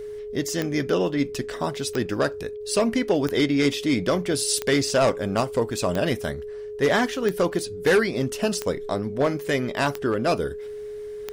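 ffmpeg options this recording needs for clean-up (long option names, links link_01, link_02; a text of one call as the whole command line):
ffmpeg -i in.wav -af "adeclick=threshold=4,bandreject=frequency=420:width=30" out.wav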